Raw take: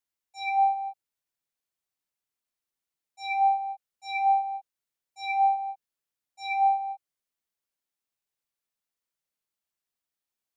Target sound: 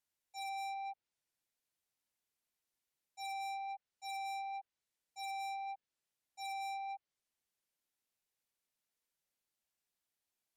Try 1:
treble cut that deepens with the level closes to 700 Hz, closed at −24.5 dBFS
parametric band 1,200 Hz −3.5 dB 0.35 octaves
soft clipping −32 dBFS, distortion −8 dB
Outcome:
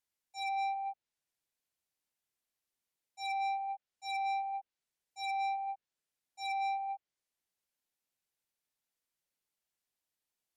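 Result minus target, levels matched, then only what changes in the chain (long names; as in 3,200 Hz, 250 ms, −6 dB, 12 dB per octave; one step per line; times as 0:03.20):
soft clipping: distortion −4 dB
change: soft clipping −40.5 dBFS, distortion −4 dB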